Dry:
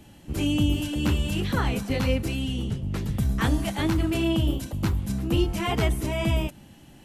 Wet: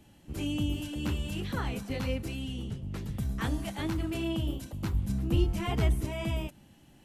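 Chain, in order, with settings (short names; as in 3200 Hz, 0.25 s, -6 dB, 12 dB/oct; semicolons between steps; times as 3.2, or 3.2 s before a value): 4.94–6.05 low shelf 200 Hz +8 dB; gain -8 dB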